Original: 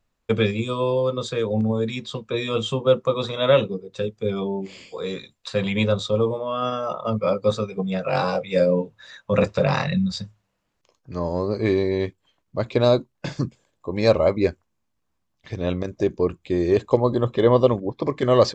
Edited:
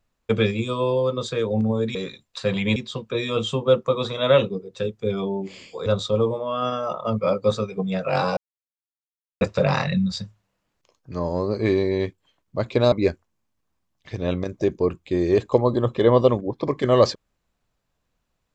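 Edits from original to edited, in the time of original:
5.05–5.86 s: move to 1.95 s
8.37–9.41 s: mute
12.92–14.31 s: delete

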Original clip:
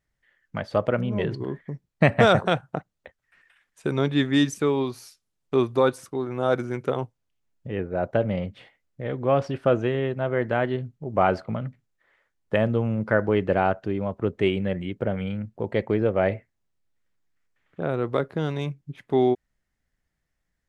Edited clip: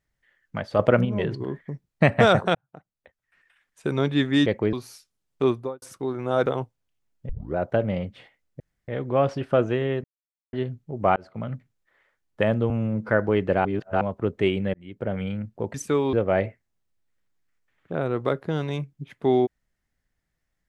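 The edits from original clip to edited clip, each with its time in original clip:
0.79–1.05 s: gain +5.5 dB
2.55–3.91 s: fade in
4.46–4.85 s: swap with 15.74–16.01 s
5.58–5.94 s: studio fade out
6.58–6.87 s: delete
7.70 s: tape start 0.27 s
9.01 s: insert room tone 0.28 s
10.17–10.66 s: mute
11.29–11.65 s: fade in
12.83–13.09 s: stretch 1.5×
13.65–14.01 s: reverse
14.74–15.17 s: fade in

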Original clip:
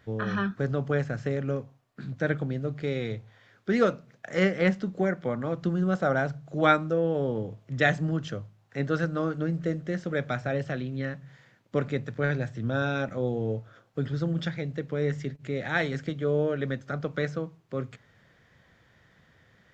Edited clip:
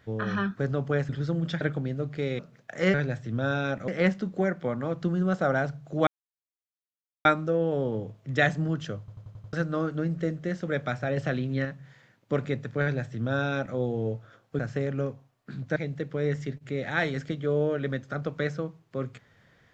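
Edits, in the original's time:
1.09–2.26 s: swap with 14.02–14.54 s
3.04–3.94 s: delete
6.68 s: insert silence 1.18 s
8.42 s: stutter in place 0.09 s, 6 plays
10.60–11.08 s: gain +3.5 dB
12.25–13.19 s: copy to 4.49 s

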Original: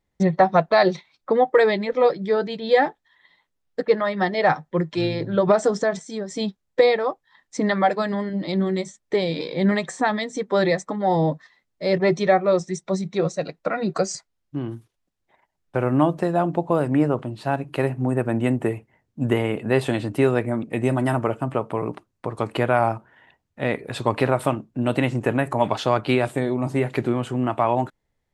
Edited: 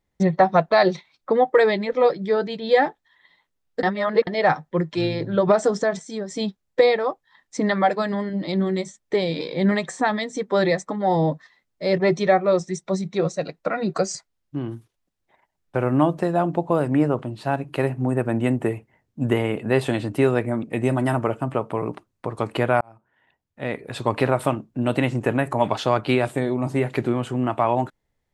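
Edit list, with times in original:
3.83–4.27 s: reverse
22.81–24.20 s: fade in

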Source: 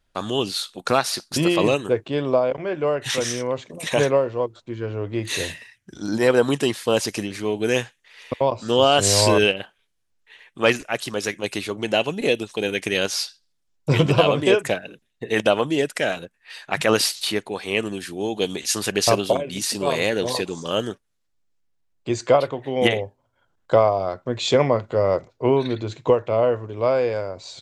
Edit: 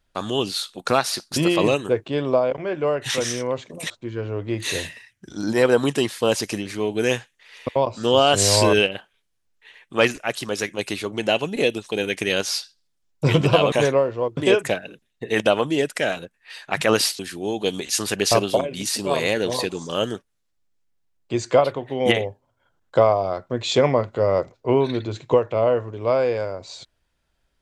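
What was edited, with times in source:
3.90–4.55 s: move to 14.37 s
17.19–17.95 s: delete

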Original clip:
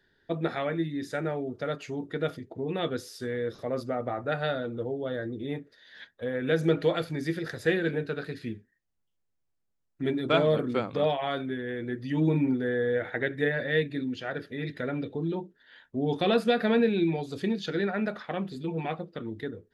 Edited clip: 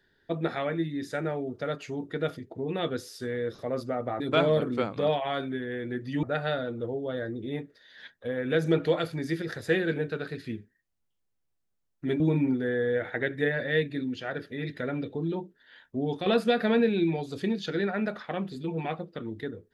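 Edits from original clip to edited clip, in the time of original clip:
10.17–12.20 s: move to 4.20 s
15.97–16.26 s: fade out, to -7 dB

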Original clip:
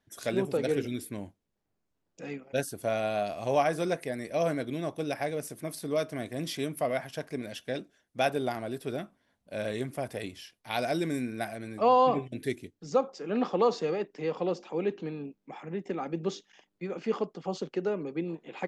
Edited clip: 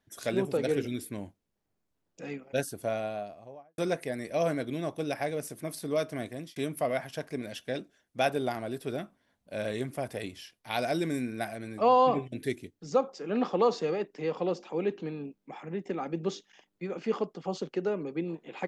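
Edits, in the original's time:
2.60–3.78 s: studio fade out
6.25–6.56 s: fade out

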